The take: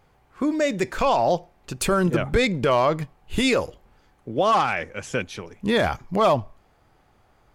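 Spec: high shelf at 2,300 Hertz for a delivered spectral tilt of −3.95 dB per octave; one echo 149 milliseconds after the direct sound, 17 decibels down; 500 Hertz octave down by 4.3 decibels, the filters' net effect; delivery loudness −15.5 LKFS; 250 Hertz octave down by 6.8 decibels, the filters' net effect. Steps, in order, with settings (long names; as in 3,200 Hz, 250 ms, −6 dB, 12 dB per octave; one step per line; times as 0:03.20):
parametric band 250 Hz −8.5 dB
parametric band 500 Hz −3 dB
high-shelf EQ 2,300 Hz −7 dB
single-tap delay 149 ms −17 dB
level +11 dB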